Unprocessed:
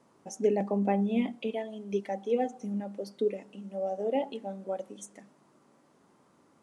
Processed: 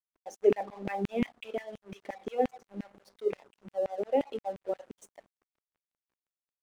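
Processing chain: high shelf 3400 Hz -6.5 dB; LFO high-pass saw down 5.7 Hz 230–2400 Hz; crossover distortion -53.5 dBFS; gain -1 dB

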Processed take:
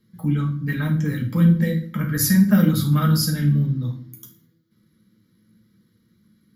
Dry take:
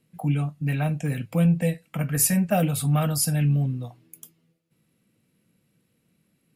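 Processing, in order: fixed phaser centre 2600 Hz, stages 6; on a send: reverb RT60 0.55 s, pre-delay 5 ms, DRR 1 dB; on the sum: gain +4.5 dB

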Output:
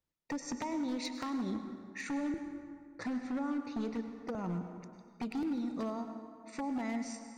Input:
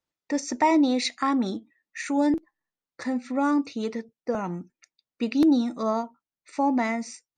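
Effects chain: compressor 16:1, threshold -30 dBFS, peak gain reduction 14.5 dB; low shelf 220 Hz +12 dB; wavefolder -24.5 dBFS; 1.43–3.94 high shelf 5900 Hz -6 dB; plate-style reverb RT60 2.2 s, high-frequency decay 0.55×, pre-delay 85 ms, DRR 7 dB; gain -6 dB

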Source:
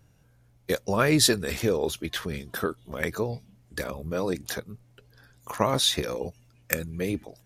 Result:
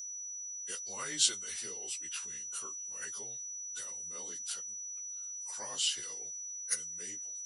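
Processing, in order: inharmonic rescaling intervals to 92%; whine 5900 Hz -38 dBFS; pre-emphasis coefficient 0.97

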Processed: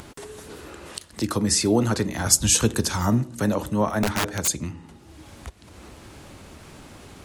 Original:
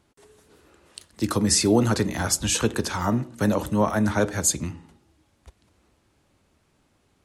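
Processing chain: upward compressor, threshold -24 dBFS; 2.26–3.4 tone controls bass +6 dB, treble +8 dB; 4.03–4.48 wrapped overs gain 15.5 dB; gain -1 dB

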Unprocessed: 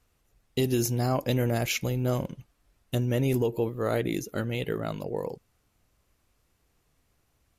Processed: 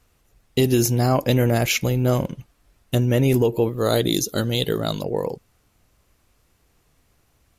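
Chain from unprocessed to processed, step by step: 3.78–5.02 resonant high shelf 3000 Hz +7 dB, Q 3; gain +7.5 dB

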